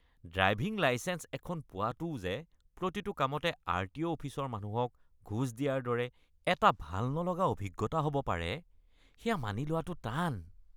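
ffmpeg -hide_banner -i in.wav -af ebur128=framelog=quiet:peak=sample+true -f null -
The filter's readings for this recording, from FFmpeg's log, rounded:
Integrated loudness:
  I:         -34.4 LUFS
  Threshold: -44.7 LUFS
Loudness range:
  LRA:         3.6 LU
  Threshold: -54.7 LUFS
  LRA low:   -36.5 LUFS
  LRA high:  -32.9 LUFS
Sample peak:
  Peak:      -10.6 dBFS
True peak:
  Peak:      -10.5 dBFS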